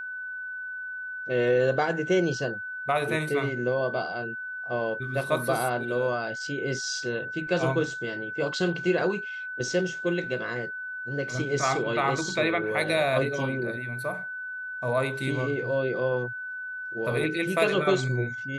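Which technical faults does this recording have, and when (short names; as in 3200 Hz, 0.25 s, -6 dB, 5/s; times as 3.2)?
tone 1500 Hz -33 dBFS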